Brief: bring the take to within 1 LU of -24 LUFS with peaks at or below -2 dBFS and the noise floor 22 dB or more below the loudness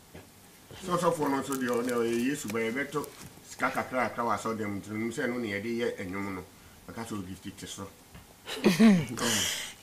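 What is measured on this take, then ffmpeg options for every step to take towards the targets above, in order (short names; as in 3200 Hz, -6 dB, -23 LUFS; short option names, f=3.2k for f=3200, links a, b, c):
loudness -29.5 LUFS; peak -11.5 dBFS; loudness target -24.0 LUFS
-> -af "volume=5.5dB"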